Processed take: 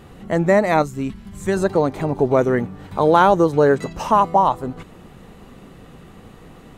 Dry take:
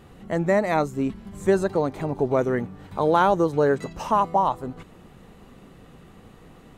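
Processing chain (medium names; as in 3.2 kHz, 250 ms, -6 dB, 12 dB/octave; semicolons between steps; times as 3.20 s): 0.82–1.57 s: peaking EQ 500 Hz -8.5 dB 2.4 oct; trim +5.5 dB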